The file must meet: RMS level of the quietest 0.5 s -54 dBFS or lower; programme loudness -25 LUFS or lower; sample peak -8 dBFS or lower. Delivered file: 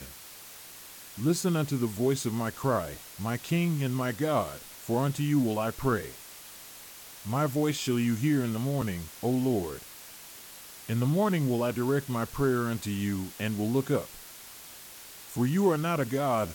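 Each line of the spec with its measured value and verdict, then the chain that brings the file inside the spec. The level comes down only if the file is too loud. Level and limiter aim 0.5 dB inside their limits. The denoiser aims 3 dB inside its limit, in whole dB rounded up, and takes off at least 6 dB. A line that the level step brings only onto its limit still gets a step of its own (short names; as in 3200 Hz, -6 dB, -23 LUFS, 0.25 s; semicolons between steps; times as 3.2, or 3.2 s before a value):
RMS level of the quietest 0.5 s -47 dBFS: fail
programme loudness -29.0 LUFS: OK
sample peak -13.0 dBFS: OK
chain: denoiser 10 dB, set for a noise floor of -47 dBFS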